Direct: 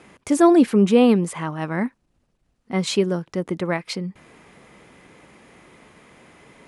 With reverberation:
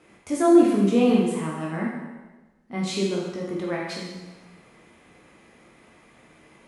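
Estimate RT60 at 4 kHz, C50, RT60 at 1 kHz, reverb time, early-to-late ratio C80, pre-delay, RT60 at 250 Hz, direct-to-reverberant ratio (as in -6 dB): 1.1 s, 1.0 dB, 1.2 s, 1.2 s, 3.0 dB, 6 ms, 1.2 s, -4.0 dB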